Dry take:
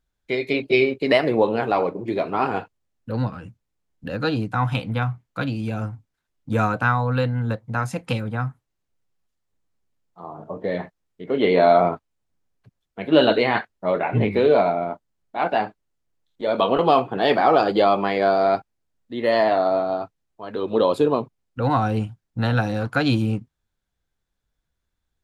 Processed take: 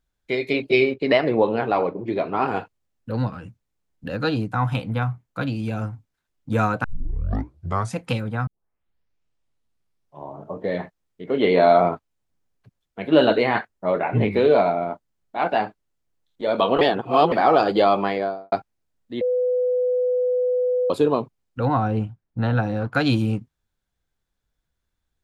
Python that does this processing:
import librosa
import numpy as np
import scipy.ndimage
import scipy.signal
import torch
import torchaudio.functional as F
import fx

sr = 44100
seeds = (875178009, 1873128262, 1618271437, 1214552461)

y = fx.air_absorb(x, sr, metres=100.0, at=(0.94, 2.48))
y = fx.peak_eq(y, sr, hz=3400.0, db=-3.5, octaves=2.1, at=(4.42, 5.47))
y = fx.peak_eq(y, sr, hz=3600.0, db=-4.0, octaves=1.1, at=(13.14, 14.19))
y = fx.studio_fade_out(y, sr, start_s=18.01, length_s=0.51)
y = fx.lowpass(y, sr, hz=1500.0, slope=6, at=(21.65, 22.95))
y = fx.edit(y, sr, fx.tape_start(start_s=6.84, length_s=1.12),
    fx.tape_start(start_s=8.47, length_s=2.04),
    fx.reverse_span(start_s=16.81, length_s=0.51),
    fx.bleep(start_s=19.21, length_s=1.69, hz=499.0, db=-18.0), tone=tone)